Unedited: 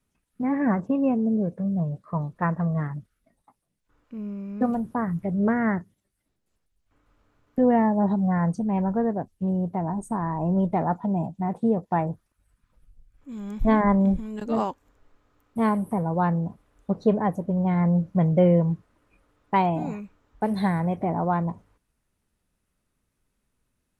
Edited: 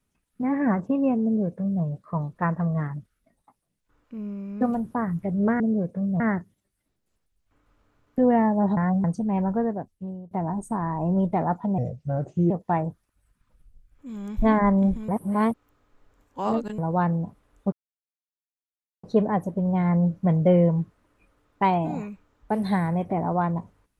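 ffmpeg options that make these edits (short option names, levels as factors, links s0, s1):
-filter_complex "[0:a]asplit=11[s0][s1][s2][s3][s4][s5][s6][s7][s8][s9][s10];[s0]atrim=end=5.602[s11];[s1]atrim=start=1.228:end=1.832[s12];[s2]atrim=start=5.598:end=8.172[s13];[s3]atrim=start=8.168:end=8.442,asetpts=PTS-STARTPTS,areverse[s14];[s4]atrim=start=8.438:end=9.71,asetpts=PTS-STARTPTS,afade=t=out:st=0.522:d=0.75:silence=0.0841395[s15];[s5]atrim=start=9.71:end=11.184,asetpts=PTS-STARTPTS,afade=t=in:d=0.004:c=hsin:silence=0.0841395[s16];[s6]atrim=start=11.18:end=11.73,asetpts=PTS-STARTPTS,asetrate=33516,aresample=44100,atrim=end_sample=31914,asetpts=PTS-STARTPTS[s17];[s7]atrim=start=11.726:end=14.312[s18];[s8]atrim=start=14.308:end=16.012,asetpts=PTS-STARTPTS,areverse[s19];[s9]atrim=start=16.008:end=16.95,asetpts=PTS-STARTPTS,afade=t=out:st=0.938:d=0.004:c=hsin,apad=pad_dur=1.31[s20];[s10]atrim=start=16.95,asetpts=PTS-STARTPTS,afade=t=in:d=0.004:c=hsin[s21];[s11][s12]acrossfade=d=0.004:c1=hsin:c2=hsin[s22];[s22][s13]acrossfade=d=0.004:c1=hsin:c2=hsin[s23];[s23][s14]acrossfade=d=0.004:c1=hsin:c2=hsin[s24];[s15][s16]concat=n=2:v=0:a=1[s25];[s24][s25]acrossfade=d=0.004:c1=hsin:c2=hsin[s26];[s26][s17]acrossfade=d=0.004:c1=hsin:c2=hsin[s27];[s27][s18]acrossfade=d=0.004:c1=hsin:c2=hsin[s28];[s28][s19]acrossfade=d=0.004:c1=hsin:c2=hsin[s29];[s20][s21]concat=n=2:v=0:a=1[s30];[s29][s30]acrossfade=d=0.004:c1=hsin:c2=hsin"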